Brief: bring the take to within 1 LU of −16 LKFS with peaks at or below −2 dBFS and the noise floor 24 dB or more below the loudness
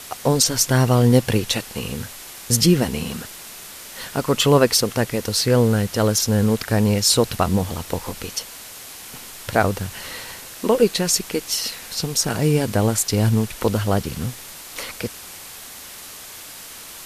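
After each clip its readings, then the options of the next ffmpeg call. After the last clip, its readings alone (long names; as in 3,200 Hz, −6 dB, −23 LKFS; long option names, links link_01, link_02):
background noise floor −38 dBFS; target noise floor −44 dBFS; integrated loudness −20.0 LKFS; sample peak −1.5 dBFS; target loudness −16.0 LKFS
→ -af "afftdn=noise_reduction=6:noise_floor=-38"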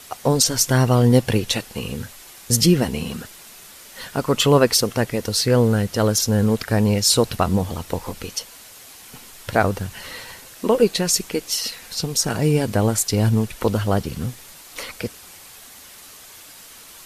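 background noise floor −43 dBFS; target noise floor −44 dBFS
→ -af "afftdn=noise_reduction=6:noise_floor=-43"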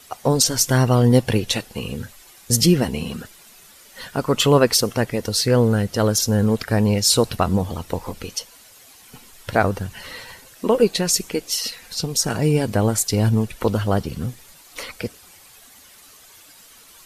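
background noise floor −48 dBFS; integrated loudness −20.0 LKFS; sample peak −1.5 dBFS; target loudness −16.0 LKFS
→ -af "volume=4dB,alimiter=limit=-2dB:level=0:latency=1"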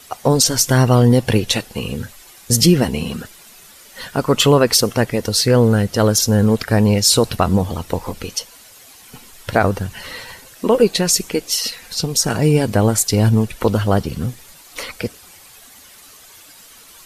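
integrated loudness −16.5 LKFS; sample peak −2.0 dBFS; background noise floor −44 dBFS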